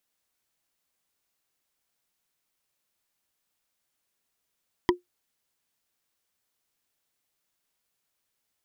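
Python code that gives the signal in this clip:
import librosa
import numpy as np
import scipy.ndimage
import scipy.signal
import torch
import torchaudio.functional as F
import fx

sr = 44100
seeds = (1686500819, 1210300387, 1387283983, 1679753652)

y = fx.strike_wood(sr, length_s=0.45, level_db=-13.5, body='bar', hz=356.0, decay_s=0.14, tilt_db=2.5, modes=5)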